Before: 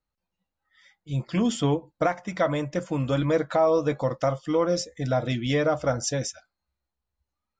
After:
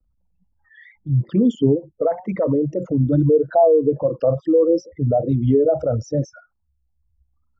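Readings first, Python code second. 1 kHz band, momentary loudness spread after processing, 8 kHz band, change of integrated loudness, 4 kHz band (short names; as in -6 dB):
+2.0 dB, 8 LU, under -10 dB, +7.0 dB, under -10 dB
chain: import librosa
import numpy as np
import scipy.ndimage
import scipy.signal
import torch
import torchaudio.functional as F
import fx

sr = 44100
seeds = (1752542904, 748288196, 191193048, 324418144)

y = fx.envelope_sharpen(x, sr, power=3.0)
y = fx.lowpass(y, sr, hz=1700.0, slope=6)
y = fx.vibrato(y, sr, rate_hz=2.3, depth_cents=99.0)
y = fx.hpss(y, sr, part='harmonic', gain_db=9)
y = fx.band_squash(y, sr, depth_pct=40)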